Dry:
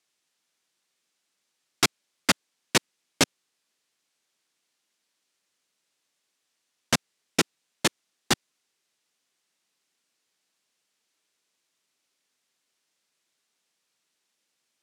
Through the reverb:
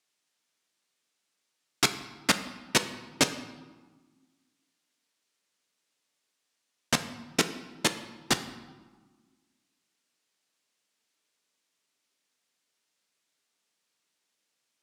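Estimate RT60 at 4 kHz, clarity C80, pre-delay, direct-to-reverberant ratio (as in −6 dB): 0.90 s, 13.5 dB, 3 ms, 8.0 dB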